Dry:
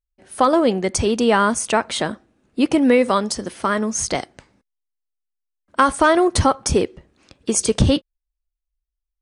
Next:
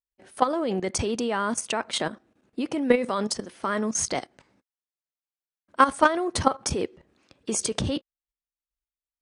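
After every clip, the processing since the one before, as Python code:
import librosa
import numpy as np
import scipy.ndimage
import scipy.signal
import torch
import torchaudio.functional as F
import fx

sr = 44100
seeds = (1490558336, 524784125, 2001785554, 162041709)

y = fx.highpass(x, sr, hz=140.0, slope=6)
y = fx.high_shelf(y, sr, hz=6600.0, db=-4.5)
y = fx.level_steps(y, sr, step_db=13)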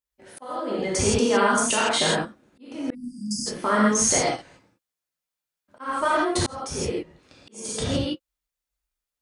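y = fx.rev_gated(x, sr, seeds[0], gate_ms=190, shape='flat', drr_db=-6.5)
y = fx.auto_swell(y, sr, attack_ms=768.0)
y = fx.spec_erase(y, sr, start_s=2.94, length_s=0.52, low_hz=320.0, high_hz=4600.0)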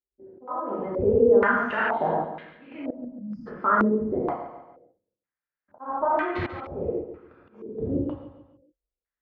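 y = fx.air_absorb(x, sr, metres=260.0)
y = fx.echo_feedback(y, sr, ms=141, feedback_pct=42, wet_db=-10.5)
y = fx.filter_held_lowpass(y, sr, hz=2.1, low_hz=380.0, high_hz=2300.0)
y = F.gain(torch.from_numpy(y), -5.0).numpy()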